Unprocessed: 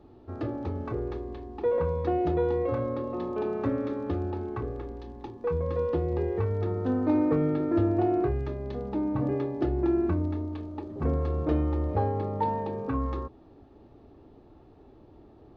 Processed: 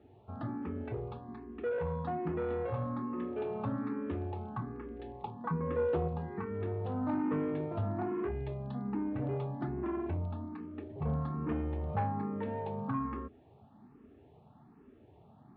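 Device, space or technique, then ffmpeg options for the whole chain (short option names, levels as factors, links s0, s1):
barber-pole phaser into a guitar amplifier: -filter_complex "[0:a]asplit=2[s0][s1];[s1]afreqshift=1.2[s2];[s0][s2]amix=inputs=2:normalize=1,asoftclip=type=tanh:threshold=0.0668,highpass=100,equalizer=f=150:t=q:w=4:g=5,equalizer=f=220:t=q:w=4:g=6,equalizer=f=330:t=q:w=4:g=-9,equalizer=f=530:t=q:w=4:g=-7,lowpass=f=3400:w=0.5412,lowpass=f=3400:w=1.3066,asettb=1/sr,asplit=3[s3][s4][s5];[s3]atrim=end=4.994[s6];[s4]atrim=start=4.99:end=6.08,asetpts=PTS-STARTPTS,afade=t=in:d=0.004:c=qsin,afade=t=out:st=1.086:d=0.004:c=qsin,equalizer=f=590:w=0.35:g=5.5[s7];[s5]atrim=start=6.076[s8];[s6][s7]acrossfade=d=0.004:c1=hsin:c2=qsin[s9];[s9][s8]acrossfade=d=0.004:c1=qsin:c2=hsin"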